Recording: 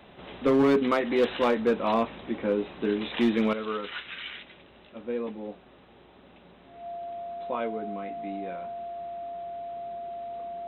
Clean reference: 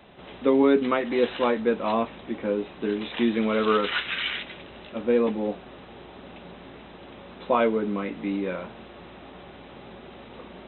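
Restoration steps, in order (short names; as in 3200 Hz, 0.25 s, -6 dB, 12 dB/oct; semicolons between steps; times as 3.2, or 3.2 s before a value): clip repair -16.5 dBFS; notch 690 Hz, Q 30; gain correction +10 dB, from 3.53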